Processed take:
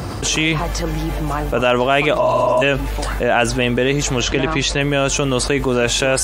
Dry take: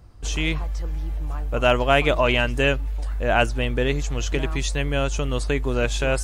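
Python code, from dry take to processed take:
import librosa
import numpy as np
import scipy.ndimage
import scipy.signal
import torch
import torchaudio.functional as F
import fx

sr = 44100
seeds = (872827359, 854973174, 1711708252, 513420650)

y = scipy.signal.sosfilt(scipy.signal.butter(2, 140.0, 'highpass', fs=sr, output='sos'), x)
y = fx.spec_repair(y, sr, seeds[0], start_s=2.24, length_s=0.36, low_hz=200.0, high_hz=3700.0, source='before')
y = fx.lowpass(y, sr, hz=5100.0, slope=12, at=(4.21, 4.81))
y = fx.env_flatten(y, sr, amount_pct=70)
y = F.gain(torch.from_numpy(y), 1.5).numpy()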